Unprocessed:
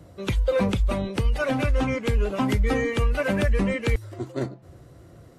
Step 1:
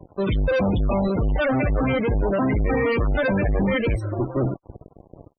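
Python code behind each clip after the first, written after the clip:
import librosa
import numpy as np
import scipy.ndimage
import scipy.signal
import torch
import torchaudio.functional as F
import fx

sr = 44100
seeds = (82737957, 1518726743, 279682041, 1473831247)

y = fx.fuzz(x, sr, gain_db=35.0, gate_db=-44.0)
y = fx.env_lowpass(y, sr, base_hz=1100.0, full_db=-12.5)
y = fx.spec_topn(y, sr, count=32)
y = F.gain(torch.from_numpy(y), -5.5).numpy()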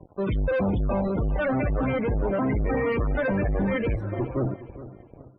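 y = scipy.signal.sosfilt(scipy.signal.butter(2, 2300.0, 'lowpass', fs=sr, output='sos'), x)
y = fx.echo_feedback(y, sr, ms=414, feedback_pct=30, wet_db=-15)
y = F.gain(torch.from_numpy(y), -3.5).numpy()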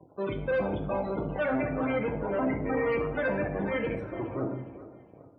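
y = fx.highpass(x, sr, hz=300.0, slope=6)
y = fx.room_shoebox(y, sr, seeds[0], volume_m3=220.0, walls='mixed', distance_m=0.59)
y = F.gain(torch.from_numpy(y), -3.0).numpy()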